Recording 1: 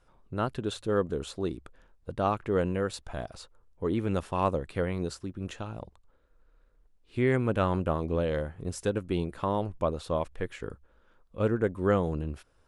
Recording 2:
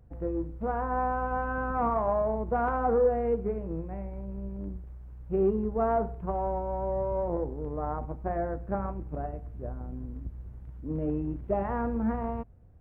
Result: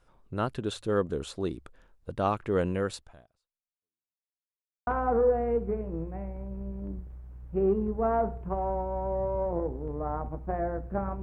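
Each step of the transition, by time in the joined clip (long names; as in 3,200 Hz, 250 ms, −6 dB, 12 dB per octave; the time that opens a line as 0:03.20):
recording 1
0:02.94–0:04.23: fade out exponential
0:04.23–0:04.87: silence
0:04.87: continue with recording 2 from 0:02.64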